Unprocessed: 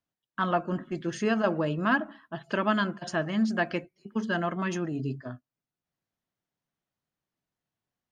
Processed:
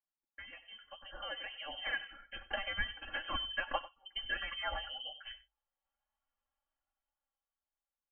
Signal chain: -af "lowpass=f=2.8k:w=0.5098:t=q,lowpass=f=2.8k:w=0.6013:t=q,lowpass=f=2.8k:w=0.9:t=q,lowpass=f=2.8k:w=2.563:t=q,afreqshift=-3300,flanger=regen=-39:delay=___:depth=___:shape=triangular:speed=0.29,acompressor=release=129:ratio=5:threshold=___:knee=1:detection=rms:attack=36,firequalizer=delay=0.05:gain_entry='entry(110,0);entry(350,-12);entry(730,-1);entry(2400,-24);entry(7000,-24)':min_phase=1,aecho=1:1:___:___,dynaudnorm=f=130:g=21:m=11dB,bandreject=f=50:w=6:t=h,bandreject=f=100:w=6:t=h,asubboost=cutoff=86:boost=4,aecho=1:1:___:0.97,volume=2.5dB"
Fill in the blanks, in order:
2.8, 4.1, -35dB, 95, 0.141, 3.6